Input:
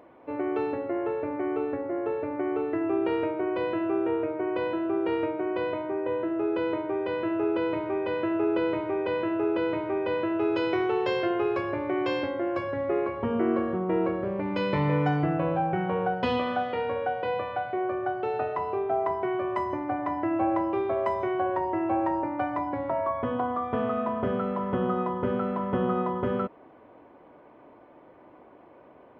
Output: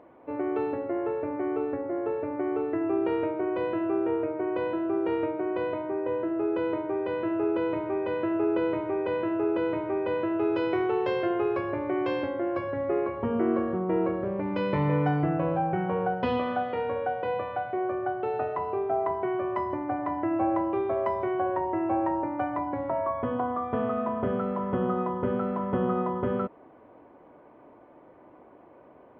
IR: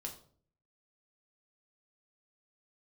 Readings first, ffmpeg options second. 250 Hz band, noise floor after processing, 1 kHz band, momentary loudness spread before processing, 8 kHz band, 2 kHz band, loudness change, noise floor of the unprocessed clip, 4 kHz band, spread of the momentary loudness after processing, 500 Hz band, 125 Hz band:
0.0 dB, −53 dBFS, −1.0 dB, 4 LU, can't be measured, −2.5 dB, −0.5 dB, −53 dBFS, −5.5 dB, 4 LU, 0.0 dB, 0.0 dB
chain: -af "lowpass=frequency=2000:poles=1"

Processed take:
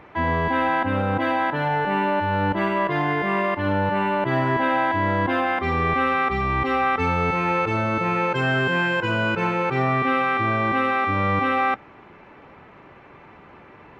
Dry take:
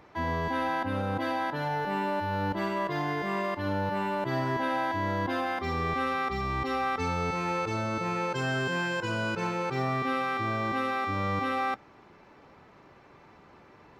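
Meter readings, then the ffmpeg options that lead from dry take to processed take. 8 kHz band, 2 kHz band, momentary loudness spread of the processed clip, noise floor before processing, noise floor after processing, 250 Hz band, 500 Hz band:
can't be measured, +9.5 dB, 2 LU, −55 dBFS, −47 dBFS, +7.5 dB, +7.5 dB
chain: -af "highshelf=frequency=3700:width_type=q:width=1.5:gain=-10,volume=7.5dB"

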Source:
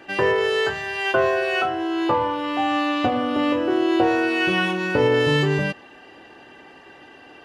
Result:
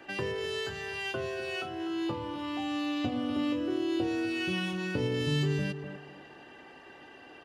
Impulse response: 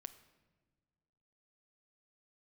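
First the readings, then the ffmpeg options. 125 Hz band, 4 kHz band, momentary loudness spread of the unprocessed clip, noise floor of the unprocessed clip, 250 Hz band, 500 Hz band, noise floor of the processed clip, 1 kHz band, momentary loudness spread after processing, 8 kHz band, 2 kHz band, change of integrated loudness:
−6.0 dB, −9.0 dB, 5 LU, −47 dBFS, −8.5 dB, −13.5 dB, −52 dBFS, −17.0 dB, 20 LU, can't be measured, −13.5 dB, −11.5 dB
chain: -filter_complex "[0:a]asplit=2[link_01][link_02];[link_02]adelay=248,lowpass=frequency=1100:poles=1,volume=-11.5dB,asplit=2[link_03][link_04];[link_04]adelay=248,lowpass=frequency=1100:poles=1,volume=0.26,asplit=2[link_05][link_06];[link_06]adelay=248,lowpass=frequency=1100:poles=1,volume=0.26[link_07];[link_03][link_05][link_07]amix=inputs=3:normalize=0[link_08];[link_01][link_08]amix=inputs=2:normalize=0,acrossover=split=310|3000[link_09][link_10][link_11];[link_10]acompressor=threshold=-33dB:ratio=10[link_12];[link_09][link_12][link_11]amix=inputs=3:normalize=0,volume=-5.5dB"

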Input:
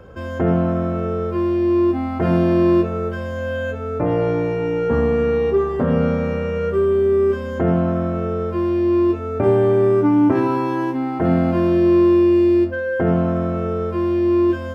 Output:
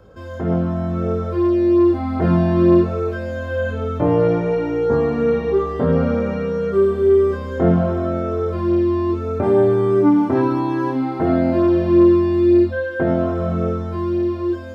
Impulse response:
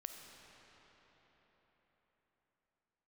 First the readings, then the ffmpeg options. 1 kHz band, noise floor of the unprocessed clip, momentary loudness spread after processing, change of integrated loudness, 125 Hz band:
0.0 dB, −27 dBFS, 8 LU, +0.5 dB, +0.5 dB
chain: -filter_complex "[0:a]dynaudnorm=framelen=110:gausssize=17:maxgain=11.5dB,asplit=2[link_01][link_02];[link_02]highshelf=frequency=2700:width_type=q:width=3:gain=10[link_03];[1:a]atrim=start_sample=2205[link_04];[link_03][link_04]afir=irnorm=-1:irlink=0,volume=-6dB[link_05];[link_01][link_05]amix=inputs=2:normalize=0,flanger=delay=19.5:depth=4.5:speed=0.61,acrossover=split=3200[link_06][link_07];[link_07]acompressor=threshold=-50dB:ratio=4:attack=1:release=60[link_08];[link_06][link_08]amix=inputs=2:normalize=0,volume=-4dB"

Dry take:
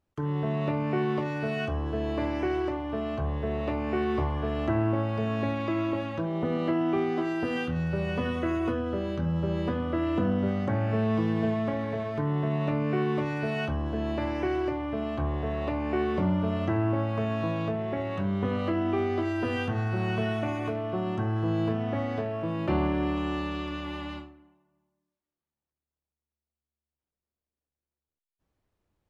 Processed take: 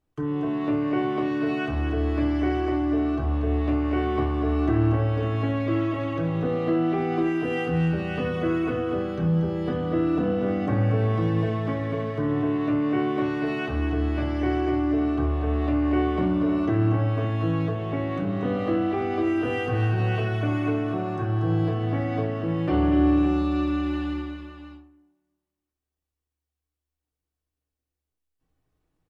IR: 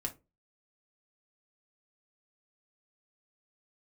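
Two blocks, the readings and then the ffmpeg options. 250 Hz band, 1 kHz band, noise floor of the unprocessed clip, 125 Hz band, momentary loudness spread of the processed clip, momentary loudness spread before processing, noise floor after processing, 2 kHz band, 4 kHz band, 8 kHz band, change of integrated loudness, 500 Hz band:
+5.0 dB, +2.5 dB, below −85 dBFS, +4.5 dB, 5 LU, 4 LU, below −85 dBFS, +2.0 dB, +1.0 dB, can't be measured, +4.0 dB, +2.5 dB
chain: -filter_complex "[0:a]aecho=1:1:235|325|554:0.473|0.112|0.316[link_01];[1:a]atrim=start_sample=2205,atrim=end_sample=3087[link_02];[link_01][link_02]afir=irnorm=-1:irlink=0"

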